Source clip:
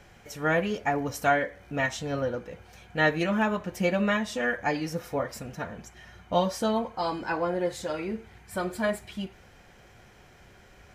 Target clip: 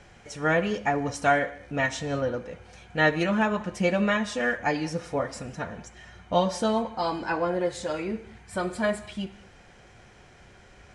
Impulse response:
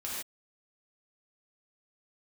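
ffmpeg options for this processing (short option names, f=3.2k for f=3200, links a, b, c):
-filter_complex "[0:a]asplit=2[a][b];[1:a]atrim=start_sample=2205,atrim=end_sample=6615,adelay=71[c];[b][c]afir=irnorm=-1:irlink=0,volume=-19.5dB[d];[a][d]amix=inputs=2:normalize=0,aresample=22050,aresample=44100,volume=1.5dB"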